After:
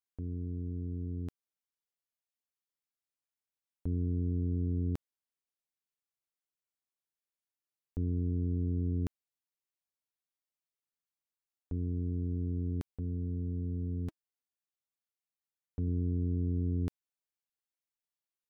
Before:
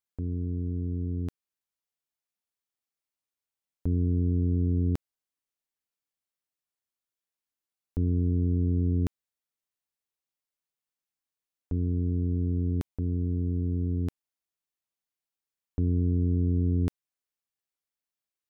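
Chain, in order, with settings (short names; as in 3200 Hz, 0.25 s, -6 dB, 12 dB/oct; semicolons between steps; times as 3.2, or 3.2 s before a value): 12.91–15.88 notch comb 320 Hz; gain -6.5 dB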